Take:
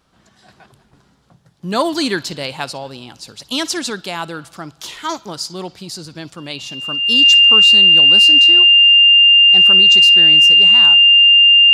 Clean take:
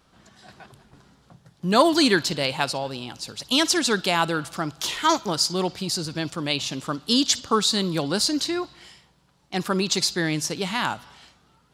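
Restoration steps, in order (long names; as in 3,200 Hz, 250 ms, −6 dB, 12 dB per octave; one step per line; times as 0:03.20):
notch filter 2,800 Hz, Q 30
level 0 dB, from 0:03.90 +3 dB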